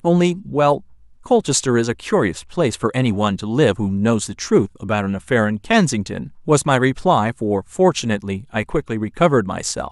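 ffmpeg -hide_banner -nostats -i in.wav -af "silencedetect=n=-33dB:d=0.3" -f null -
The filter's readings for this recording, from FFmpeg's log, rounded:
silence_start: 0.80
silence_end: 1.26 | silence_duration: 0.46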